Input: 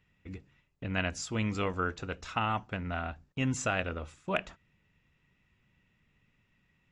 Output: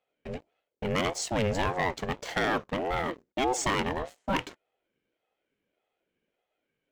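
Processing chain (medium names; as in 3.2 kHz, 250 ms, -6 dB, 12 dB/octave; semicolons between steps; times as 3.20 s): waveshaping leveller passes 3; ring modulator with a swept carrier 470 Hz, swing 35%, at 1.7 Hz; trim -2.5 dB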